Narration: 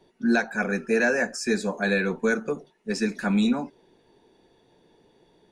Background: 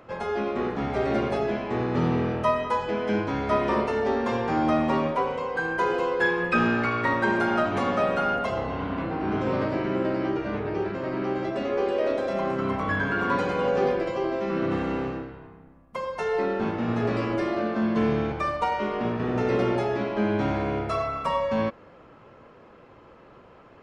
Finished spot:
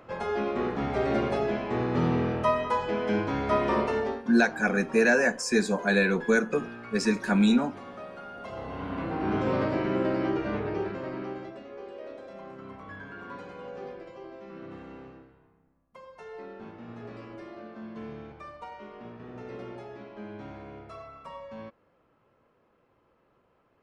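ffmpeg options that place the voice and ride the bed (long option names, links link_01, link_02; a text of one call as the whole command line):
ffmpeg -i stem1.wav -i stem2.wav -filter_complex "[0:a]adelay=4050,volume=0.5dB[link_01];[1:a]volume=15.5dB,afade=type=out:start_time=3.96:duration=0.27:silence=0.149624,afade=type=in:start_time=8.33:duration=0.94:silence=0.141254,afade=type=out:start_time=10.54:duration=1.09:silence=0.158489[link_02];[link_01][link_02]amix=inputs=2:normalize=0" out.wav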